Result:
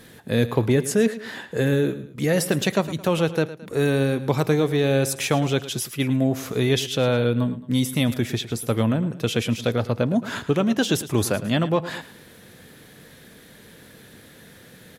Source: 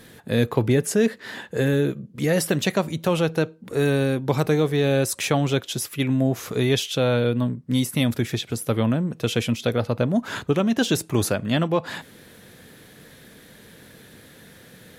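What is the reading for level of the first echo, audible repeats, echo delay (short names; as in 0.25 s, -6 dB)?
-15.0 dB, 2, 0.109 s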